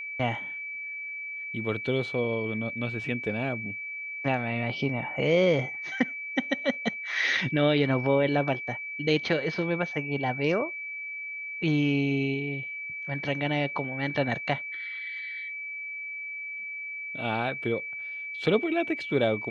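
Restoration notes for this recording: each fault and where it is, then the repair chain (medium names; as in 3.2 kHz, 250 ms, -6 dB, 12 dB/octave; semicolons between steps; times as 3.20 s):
whine 2.3 kHz -34 dBFS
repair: band-stop 2.3 kHz, Q 30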